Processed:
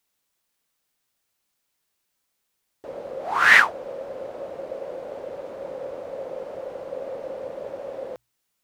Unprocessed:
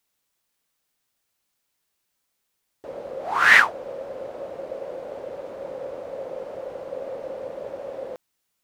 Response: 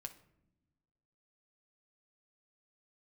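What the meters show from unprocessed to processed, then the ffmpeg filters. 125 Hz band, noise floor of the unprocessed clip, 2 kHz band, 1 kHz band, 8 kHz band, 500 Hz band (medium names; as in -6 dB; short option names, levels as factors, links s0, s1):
no reading, -77 dBFS, 0.0 dB, 0.0 dB, 0.0 dB, 0.0 dB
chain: -af "bandreject=f=60:t=h:w=6,bandreject=f=120:t=h:w=6"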